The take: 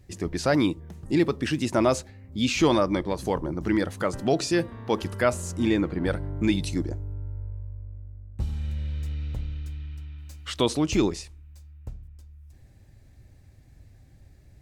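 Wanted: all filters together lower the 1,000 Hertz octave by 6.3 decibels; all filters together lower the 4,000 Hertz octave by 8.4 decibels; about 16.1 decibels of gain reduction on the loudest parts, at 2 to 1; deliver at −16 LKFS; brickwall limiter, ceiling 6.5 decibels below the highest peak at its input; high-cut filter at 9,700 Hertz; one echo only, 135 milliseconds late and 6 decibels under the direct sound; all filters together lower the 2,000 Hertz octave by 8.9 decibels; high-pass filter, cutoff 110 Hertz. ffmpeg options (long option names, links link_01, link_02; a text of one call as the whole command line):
ffmpeg -i in.wav -af "highpass=110,lowpass=9700,equalizer=frequency=1000:width_type=o:gain=-6,equalizer=frequency=2000:width_type=o:gain=-7.5,equalizer=frequency=4000:width_type=o:gain=-8,acompressor=threshold=-49dB:ratio=2,alimiter=level_in=8dB:limit=-24dB:level=0:latency=1,volume=-8dB,aecho=1:1:135:0.501,volume=27.5dB" out.wav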